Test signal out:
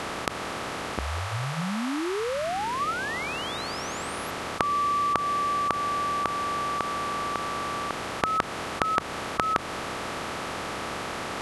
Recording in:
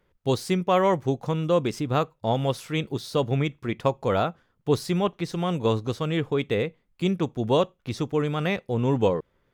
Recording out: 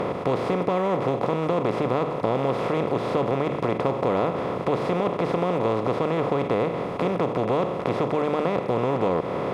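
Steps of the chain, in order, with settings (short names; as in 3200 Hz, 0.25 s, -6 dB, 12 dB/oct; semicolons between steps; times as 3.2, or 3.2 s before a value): per-bin compression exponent 0.2; LPF 1200 Hz 6 dB/oct; low shelf 200 Hz -4 dB; notches 50/100/150 Hz; compressor 2:1, threshold -22 dBFS; gain -1 dB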